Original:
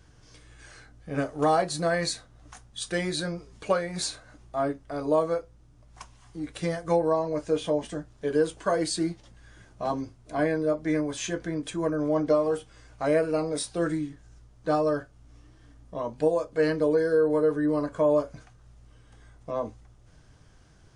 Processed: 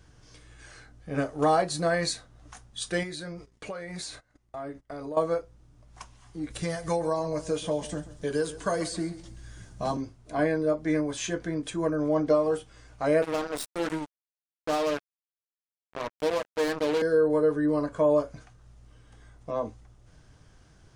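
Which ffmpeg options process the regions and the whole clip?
ffmpeg -i in.wav -filter_complex "[0:a]asettb=1/sr,asplit=3[link_01][link_02][link_03];[link_01]atrim=end=3.034[link_04];[link_02]atrim=start=3.03:end=5.17,asetpts=PTS-STARTPTS,afade=type=in:duration=0.004:curve=qsin,afade=type=out:start_time=2.136:duration=0.004:curve=qsin,agate=range=-19dB:threshold=-49dB:ratio=16:release=100:detection=peak,equalizer=frequency=2000:width_type=o:width=0.2:gain=6.5,acompressor=threshold=-35dB:ratio=4:attack=3.2:release=140:knee=1:detection=peak[link_05];[link_03]atrim=start=5.166[link_06];[link_04][link_05]acrossfade=duration=0.004:curve1=hsin:curve2=qsin[link_07];[link_07][link_06]acrossfade=duration=0.004:curve1=qsin:curve2=hsin,asettb=1/sr,asplit=3[link_08][link_09][link_10];[link_08]atrim=end=6.504[link_11];[link_09]atrim=start=6.5:end=9.97,asetpts=PTS-STARTPTS,afade=type=in:duration=0.004:curve=qsin,afade=type=out:start_time=3.466:duration=0.004:curve=qsin,bass=frequency=250:gain=8,treble=frequency=4000:gain=9,acrossover=split=520|2400[link_12][link_13][link_14];[link_12]acompressor=threshold=-32dB:ratio=4[link_15];[link_13]acompressor=threshold=-26dB:ratio=4[link_16];[link_14]acompressor=threshold=-40dB:ratio=4[link_17];[link_15][link_16][link_17]amix=inputs=3:normalize=0,aecho=1:1:135|270|405:0.158|0.0539|0.0183,atrim=end_sample=153027[link_18];[link_10]atrim=start=9.966[link_19];[link_11][link_18]acrossfade=duration=0.004:curve1=hsin:curve2=qsin[link_20];[link_20][link_19]acrossfade=duration=0.004:curve1=qsin:curve2=hsin,asettb=1/sr,asplit=3[link_21][link_22][link_23];[link_21]atrim=end=13.224[link_24];[link_22]atrim=start=13.22:end=17.02,asetpts=PTS-STARTPTS,afade=type=in:duration=0.004:curve=qsin,afade=type=out:start_time=3.796:duration=0.004:curve=qsin,aeval=exprs='(tanh(8.91*val(0)+0.55)-tanh(0.55))/8.91':channel_layout=same,highpass=frequency=200:width=0.5412,highpass=frequency=200:width=1.3066,acrusher=bits=4:mix=0:aa=0.5[link_25];[link_23]atrim=start=17.016[link_26];[link_24][link_25]acrossfade=duration=0.004:curve1=hsin:curve2=qsin[link_27];[link_27][link_26]acrossfade=duration=0.004:curve1=qsin:curve2=hsin" out.wav

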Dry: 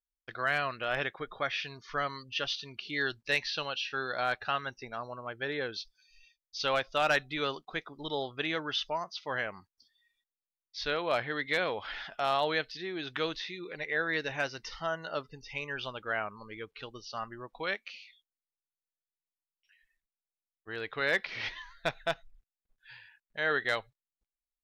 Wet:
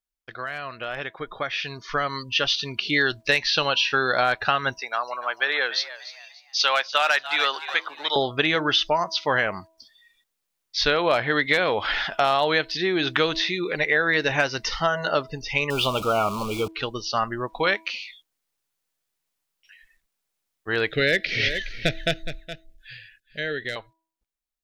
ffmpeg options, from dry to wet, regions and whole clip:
ffmpeg -i in.wav -filter_complex "[0:a]asettb=1/sr,asplit=3[link_01][link_02][link_03];[link_01]atrim=end=4.784[link_04];[link_02]atrim=start=4.78:end=8.16,asetpts=PTS-STARTPTS,afade=type=in:duration=0.004:curve=qsin,afade=type=out:start_time=3.376:duration=0.004:curve=qsin,highpass=840,asplit=4[link_05][link_06][link_07][link_08];[link_06]adelay=291,afreqshift=98,volume=-15dB[link_09];[link_07]adelay=582,afreqshift=196,volume=-25.2dB[link_10];[link_08]adelay=873,afreqshift=294,volume=-35.3dB[link_11];[link_05][link_09][link_10][link_11]amix=inputs=4:normalize=0,atrim=end_sample=149058[link_12];[link_03]atrim=start=8.156[link_13];[link_04][link_12]acrossfade=duration=0.004:curve1=hsin:curve2=qsin[link_14];[link_14][link_13]acrossfade=duration=0.004:curve1=qsin:curve2=hsin,asettb=1/sr,asplit=3[link_15][link_16][link_17];[link_15]atrim=end=15.704[link_18];[link_16]atrim=start=15.7:end=16.68,asetpts=PTS-STARTPTS,afade=type=in:duration=0.004:curve=qsin,afade=type=out:start_time=0.976:duration=0.004:curve=qsin,aeval=exprs='val(0)+0.5*0.00708*sgn(val(0))':channel_layout=same,asuperstop=centerf=1800:order=12:qfactor=2[link_19];[link_17]atrim=start=16.676[link_20];[link_18][link_19]acrossfade=duration=0.004:curve1=hsin:curve2=qsin[link_21];[link_21][link_20]acrossfade=duration=0.004:curve1=qsin:curve2=hsin,asettb=1/sr,asplit=3[link_22][link_23][link_24];[link_22]atrim=end=20.894[link_25];[link_23]atrim=start=20.89:end=23.76,asetpts=PTS-STARTPTS,afade=type=in:duration=0.004:curve=qsin,afade=type=out:start_time=2.866:duration=0.004:curve=qsin,asuperstop=centerf=1000:order=4:qfactor=0.78,lowshelf=frequency=180:gain=6.5,aecho=1:1:417:0.2,atrim=end_sample=126567[link_26];[link_24]atrim=start=23.756[link_27];[link_25][link_26]acrossfade=duration=0.004:curve1=hsin:curve2=qsin[link_28];[link_28][link_27]acrossfade=duration=0.004:curve1=qsin:curve2=hsin,acompressor=threshold=-32dB:ratio=6,bandreject=frequency=325:width_type=h:width=4,bandreject=frequency=650:width_type=h:width=4,bandreject=frequency=975:width_type=h:width=4,dynaudnorm=framelen=220:gausssize=17:maxgain=11.5dB,volume=3.5dB" out.wav

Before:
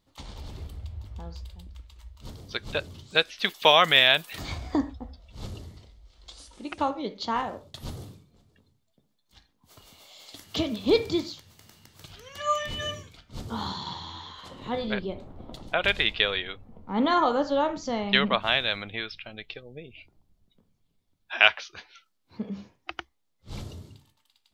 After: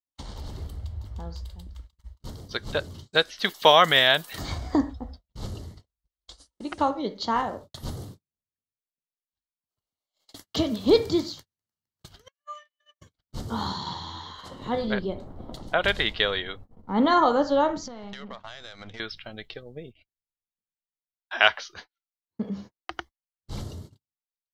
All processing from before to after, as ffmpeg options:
ffmpeg -i in.wav -filter_complex "[0:a]asettb=1/sr,asplit=3[link_01][link_02][link_03];[link_01]atrim=end=12.284[link_04];[link_02]atrim=start=12.28:end=13.01,asetpts=PTS-STARTPTS,afade=type=in:duration=0.004:curve=qsin,afade=type=out:start_time=0.726:duration=0.004:curve=qsin,highpass=460,lowpass=2100,aderivative[link_05];[link_03]atrim=start=13.006[link_06];[link_04][link_05]acrossfade=duration=0.004:curve1=hsin:curve2=qsin[link_07];[link_07][link_06]acrossfade=duration=0.004:curve1=qsin:curve2=hsin,asettb=1/sr,asplit=3[link_08][link_09][link_10];[link_08]atrim=end=17.864[link_11];[link_09]atrim=start=17.86:end=19,asetpts=PTS-STARTPTS,afade=type=in:duration=0.004:curve=qsin,afade=type=out:start_time=1.136:duration=0.004:curve=qsin,aeval=exprs='if(lt(val(0),0),0.447*val(0),val(0))':channel_layout=same,lowpass=frequency=6900:width=0.5412,lowpass=frequency=6900:width=1.3066,acompressor=threshold=-38dB:ratio=8:attack=3.2:release=140:knee=1:detection=peak[link_12];[link_10]atrim=start=18.996[link_13];[link_11][link_12]acrossfade=duration=0.004:curve1=hsin:curve2=qsin[link_14];[link_14][link_13]acrossfade=duration=0.004:curve1=qsin:curve2=hsin,agate=range=-43dB:threshold=-45dB:ratio=16:detection=peak,equalizer=frequency=2500:width_type=o:width=0.28:gain=-11.5,bandreject=frequency=3500:width=19,volume=3dB" out.wav

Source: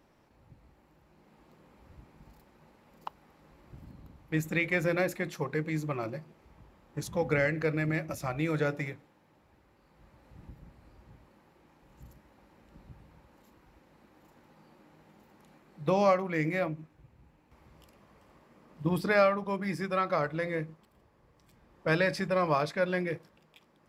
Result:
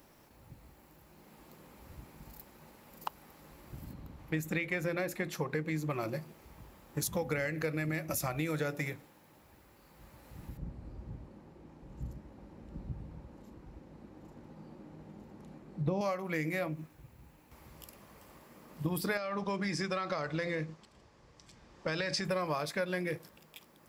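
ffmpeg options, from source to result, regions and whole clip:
ffmpeg -i in.wav -filter_complex "[0:a]asettb=1/sr,asplit=3[link_01][link_02][link_03];[link_01]atrim=end=3.934[link_04];[link_02]atrim=start=3.93:end=5.9,asetpts=PTS-STARTPTS,afade=type=in:duration=0.004:curve=qsin,afade=type=out:start_time=1.966:duration=0.004:curve=qsin,acompressor=mode=upward:threshold=-48dB:ratio=2.5:attack=3.2:release=140:knee=2.83:detection=peak,lowpass=frequency=3700:poles=1[link_05];[link_03]atrim=start=5.896[link_06];[link_04][link_05]acrossfade=duration=0.004:curve1=hsin:curve2=qsin[link_07];[link_07][link_06]acrossfade=duration=0.004:curve1=qsin:curve2=hsin,asettb=1/sr,asplit=3[link_08][link_09][link_10];[link_08]atrim=end=10.574[link_11];[link_09]atrim=start=10.57:end=16.01,asetpts=PTS-STARTPTS,afade=type=in:duration=0.004:curve=qsin,afade=type=out:start_time=5.436:duration=0.004:curve=qsin,lowpass=7100,tiltshelf=frequency=750:gain=8.5[link_12];[link_10]atrim=start=16.006[link_13];[link_11][link_12]acrossfade=duration=0.004:curve1=hsin:curve2=qsin[link_14];[link_14][link_13]acrossfade=duration=0.004:curve1=qsin:curve2=hsin,asettb=1/sr,asplit=3[link_15][link_16][link_17];[link_15]atrim=end=19.174[link_18];[link_16]atrim=start=19.17:end=22.25,asetpts=PTS-STARTPTS,afade=type=in:duration=0.004:curve=qsin,afade=type=out:start_time=3.076:duration=0.004:curve=qsin,lowpass=frequency=6300:width=0.5412,lowpass=frequency=6300:width=1.3066,aemphasis=mode=production:type=cd,acompressor=threshold=-30dB:ratio=4:attack=3.2:release=140:knee=1:detection=peak[link_19];[link_17]atrim=start=22.246[link_20];[link_18][link_19]acrossfade=duration=0.004:curve1=hsin:curve2=qsin[link_21];[link_21][link_20]acrossfade=duration=0.004:curve1=qsin:curve2=hsin,aemphasis=mode=production:type=50fm,acompressor=threshold=-34dB:ratio=6,volume=3.5dB" out.wav

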